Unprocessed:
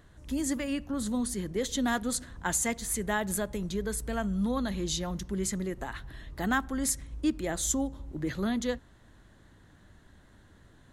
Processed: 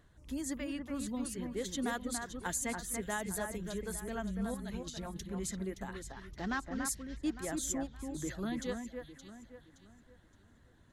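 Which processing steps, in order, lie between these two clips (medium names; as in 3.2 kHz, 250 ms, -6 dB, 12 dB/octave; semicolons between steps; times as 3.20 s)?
6.10–6.85 s: CVSD coder 32 kbps; reverb removal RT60 0.51 s; 4.54–5.22 s: compressor with a negative ratio -36 dBFS, ratio -0.5; echo whose repeats swap between lows and highs 285 ms, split 2.3 kHz, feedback 57%, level -5 dB; trim -7 dB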